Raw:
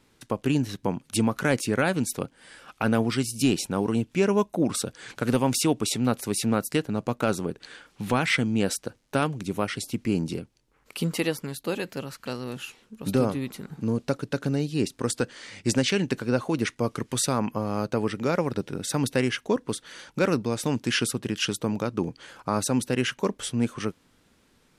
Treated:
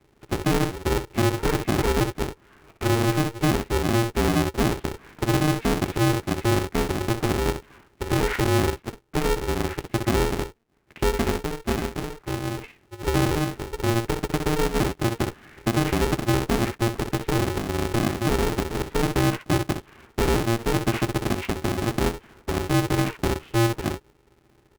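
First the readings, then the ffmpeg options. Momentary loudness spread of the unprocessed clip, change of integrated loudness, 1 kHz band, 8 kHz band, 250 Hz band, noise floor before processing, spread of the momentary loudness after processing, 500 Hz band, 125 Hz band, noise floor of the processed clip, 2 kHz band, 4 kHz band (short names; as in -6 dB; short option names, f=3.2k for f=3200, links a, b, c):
10 LU, +2.0 dB, +4.5 dB, -2.5 dB, +1.0 dB, -64 dBFS, 8 LU, +2.0 dB, +5.0 dB, -60 dBFS, +2.0 dB, +0.5 dB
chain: -af "highpass=f=84:w=0.5412,highpass=f=84:w=1.3066,equalizer=f=910:w=0.64:g=-14,bandreject=f=560:w=12,aecho=1:1:12|63:0.596|0.447,highpass=f=170:t=q:w=0.5412,highpass=f=170:t=q:w=1.307,lowpass=f=2.6k:t=q:w=0.5176,lowpass=f=2.6k:t=q:w=0.7071,lowpass=f=2.6k:t=q:w=1.932,afreqshift=-350,lowshelf=f=270:t=q:w=3:g=7,alimiter=limit=-14.5dB:level=0:latency=1:release=58,aeval=exprs='val(0)*sgn(sin(2*PI*230*n/s))':c=same"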